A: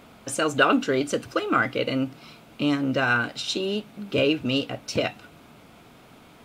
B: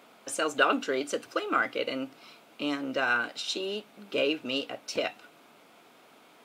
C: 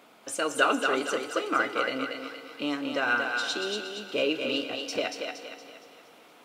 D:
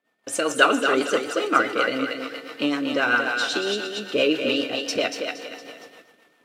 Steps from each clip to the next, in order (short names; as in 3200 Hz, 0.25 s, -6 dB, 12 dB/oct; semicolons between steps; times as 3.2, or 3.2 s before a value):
HPF 340 Hz 12 dB/oct; gain -4 dB
thinning echo 0.233 s, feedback 45%, high-pass 400 Hz, level -4 dB; FDN reverb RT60 3.4 s, high-frequency decay 0.8×, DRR 12 dB
whine 1800 Hz -55 dBFS; gate -50 dBFS, range -30 dB; rotary speaker horn 7.5 Hz; gain +8.5 dB